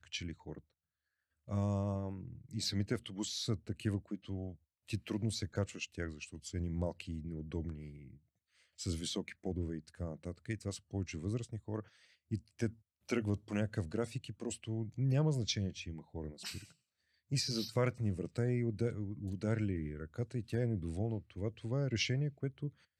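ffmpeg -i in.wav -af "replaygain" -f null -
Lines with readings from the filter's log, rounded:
track_gain = +19.4 dB
track_peak = 0.082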